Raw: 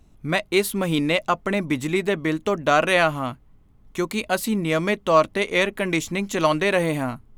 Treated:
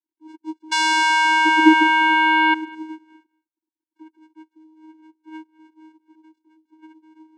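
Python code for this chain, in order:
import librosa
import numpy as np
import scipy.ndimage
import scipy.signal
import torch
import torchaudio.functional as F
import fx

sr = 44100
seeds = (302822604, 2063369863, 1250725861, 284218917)

p1 = fx.sine_speech(x, sr)
p2 = fx.doppler_pass(p1, sr, speed_mps=52, closest_m=5.5, pass_at_s=1.67)
p3 = fx.low_shelf(p2, sr, hz=340.0, db=-5.5)
p4 = fx.sample_hold(p3, sr, seeds[0], rate_hz=2800.0, jitter_pct=0)
p5 = p3 + (p4 * 10.0 ** (-4.0 / 20.0))
p6 = fx.spec_paint(p5, sr, seeds[1], shape='fall', start_s=0.71, length_s=1.83, low_hz=1200.0, high_hz=2800.0, level_db=-14.0)
p7 = p6 + fx.echo_single(p6, sr, ms=209, db=-22.5, dry=0)
p8 = fx.vocoder(p7, sr, bands=4, carrier='square', carrier_hz=315.0)
y = p8 * 10.0 ** (-1.0 / 20.0)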